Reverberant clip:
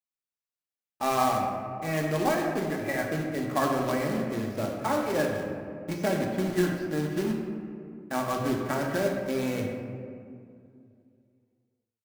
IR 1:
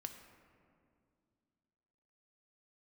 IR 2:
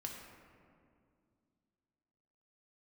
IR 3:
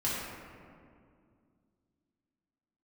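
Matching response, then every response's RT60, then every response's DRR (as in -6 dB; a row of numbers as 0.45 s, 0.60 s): 2; 2.3 s, 2.3 s, 2.2 s; 5.5 dB, 0.0 dB, -8.5 dB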